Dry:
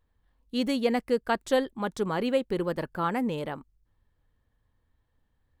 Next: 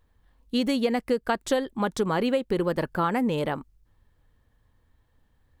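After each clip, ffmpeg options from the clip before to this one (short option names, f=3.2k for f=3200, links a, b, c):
-af "acompressor=threshold=-28dB:ratio=5,volume=7dB"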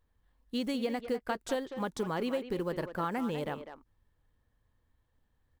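-filter_complex "[0:a]acrusher=bits=8:mode=log:mix=0:aa=0.000001,asplit=2[a][b];[b]adelay=200,highpass=300,lowpass=3.4k,asoftclip=type=hard:threshold=-19dB,volume=-9dB[c];[a][c]amix=inputs=2:normalize=0,volume=-8.5dB"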